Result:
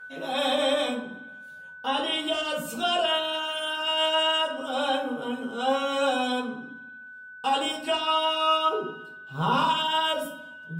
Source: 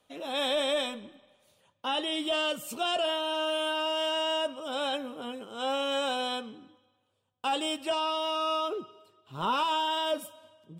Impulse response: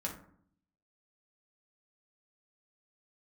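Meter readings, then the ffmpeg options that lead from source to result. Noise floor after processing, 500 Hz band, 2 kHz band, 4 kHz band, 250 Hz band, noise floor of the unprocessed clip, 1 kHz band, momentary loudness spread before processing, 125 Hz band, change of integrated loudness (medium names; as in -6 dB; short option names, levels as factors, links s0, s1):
-44 dBFS, +3.0 dB, +6.0 dB, +4.5 dB, +5.0 dB, -74 dBFS, +5.0 dB, 10 LU, no reading, +4.5 dB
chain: -filter_complex "[0:a]aeval=exprs='val(0)+0.00562*sin(2*PI*1500*n/s)':c=same[s0];[1:a]atrim=start_sample=2205,asetrate=37926,aresample=44100[s1];[s0][s1]afir=irnorm=-1:irlink=0,volume=1.26"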